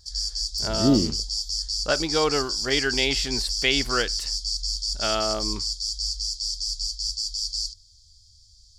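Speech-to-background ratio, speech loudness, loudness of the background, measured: 1.5 dB, -25.0 LUFS, -26.5 LUFS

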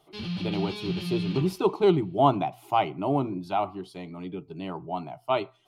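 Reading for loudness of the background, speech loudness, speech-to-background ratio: -33.0 LUFS, -27.5 LUFS, 5.5 dB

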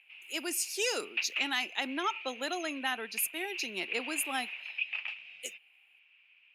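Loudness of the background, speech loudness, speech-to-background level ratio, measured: -39.0 LUFS, -34.5 LUFS, 4.5 dB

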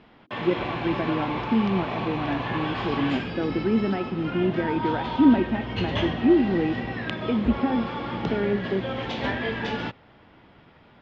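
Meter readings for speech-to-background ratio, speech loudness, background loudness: 4.5 dB, -26.0 LUFS, -30.5 LUFS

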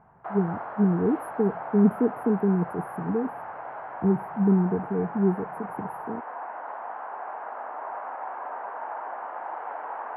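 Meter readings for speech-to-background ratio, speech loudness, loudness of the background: 11.0 dB, -25.5 LUFS, -36.5 LUFS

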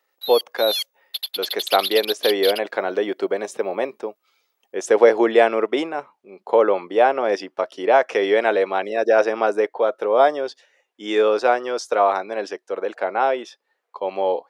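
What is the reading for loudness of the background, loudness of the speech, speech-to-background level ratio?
-26.0 LUFS, -20.5 LUFS, 5.5 dB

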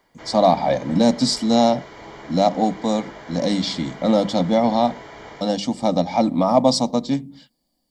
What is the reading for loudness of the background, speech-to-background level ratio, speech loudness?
-39.0 LUFS, 19.0 dB, -20.0 LUFS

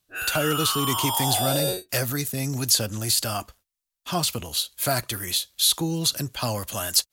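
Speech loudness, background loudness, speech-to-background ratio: -24.5 LUFS, -25.5 LUFS, 1.0 dB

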